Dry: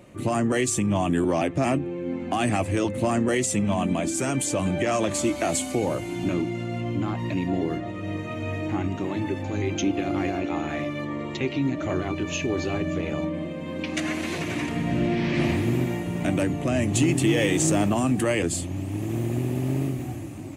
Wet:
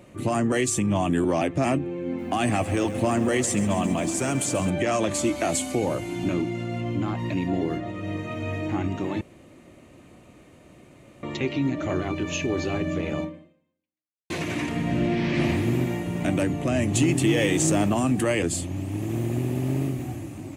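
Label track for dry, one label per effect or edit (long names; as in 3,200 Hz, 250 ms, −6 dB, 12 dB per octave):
2.050000	4.700000	feedback echo at a low word length 135 ms, feedback 80%, word length 8 bits, level −14 dB
9.210000	11.230000	fill with room tone
13.210000	14.300000	fade out exponential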